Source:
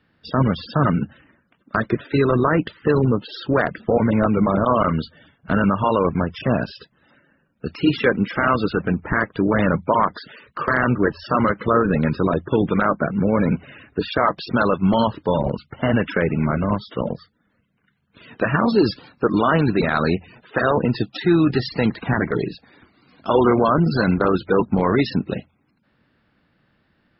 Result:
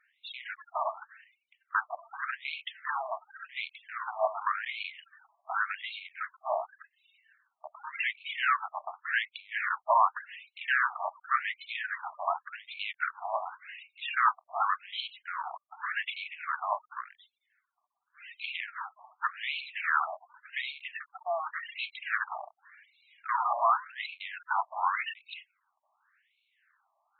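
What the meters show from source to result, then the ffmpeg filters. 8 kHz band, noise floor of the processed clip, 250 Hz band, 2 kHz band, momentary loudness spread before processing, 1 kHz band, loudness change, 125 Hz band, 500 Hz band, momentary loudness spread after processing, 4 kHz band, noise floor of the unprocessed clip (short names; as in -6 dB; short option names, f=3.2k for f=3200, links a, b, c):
n/a, -81 dBFS, under -40 dB, -6.5 dB, 9 LU, -7.5 dB, -12.5 dB, under -40 dB, -20.0 dB, 16 LU, -6.5 dB, -66 dBFS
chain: -af "bandreject=f=60:t=h:w=6,bandreject=f=120:t=h:w=6,aeval=exprs='clip(val(0),-1,0.0596)':c=same,afftfilt=real='re*between(b*sr/1024,840*pow(3100/840,0.5+0.5*sin(2*PI*0.88*pts/sr))/1.41,840*pow(3100/840,0.5+0.5*sin(2*PI*0.88*pts/sr))*1.41)':imag='im*between(b*sr/1024,840*pow(3100/840,0.5+0.5*sin(2*PI*0.88*pts/sr))/1.41,840*pow(3100/840,0.5+0.5*sin(2*PI*0.88*pts/sr))*1.41)':win_size=1024:overlap=0.75"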